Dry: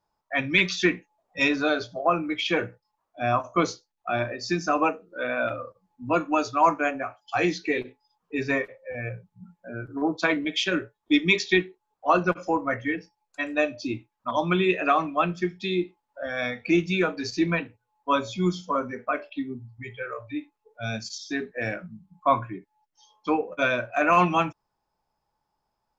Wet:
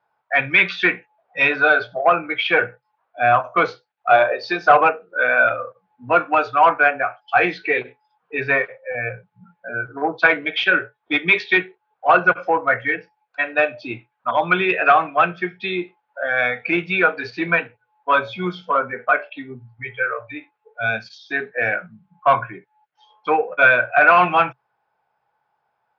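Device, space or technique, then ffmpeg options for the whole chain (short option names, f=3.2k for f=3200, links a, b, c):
overdrive pedal into a guitar cabinet: -filter_complex "[0:a]asettb=1/sr,asplit=3[a][b][c];[a]atrim=end=4.104[d];[b]atrim=start=4.1:end=4.81,asetpts=PTS-STARTPTS,afade=t=in:d=0.004:c=qsin,afade=t=out:st=0.706:d=0.004:c=qsin,equalizer=f=125:t=o:w=1:g=-10,equalizer=f=250:t=o:w=1:g=-4,equalizer=f=500:t=o:w=1:g=8,equalizer=f=1k:t=o:w=1:g=6,equalizer=f=2k:t=o:w=1:g=-5,equalizer=f=4k:t=o:w=1:g=9[e];[c]atrim=start=4.806[f];[d][e]acrossfade=d=0.004:c1=hsin:c2=qsin[g];[g][f]acrossfade=d=0.004:c1=qsin:c2=hsin,asplit=2[h][i];[i]highpass=f=720:p=1,volume=12dB,asoftclip=type=tanh:threshold=-6dB[j];[h][j]amix=inputs=2:normalize=0,lowpass=f=5.3k:p=1,volume=-6dB,highpass=78,equalizer=f=130:t=q:w=4:g=9,equalizer=f=290:t=q:w=4:g=-5,equalizer=f=470:t=q:w=4:g=6,equalizer=f=740:t=q:w=4:g=7,equalizer=f=1.5k:t=q:w=4:g=10,equalizer=f=2.3k:t=q:w=4:g=4,lowpass=f=3.6k:w=0.5412,lowpass=f=3.6k:w=1.3066,volume=-1dB"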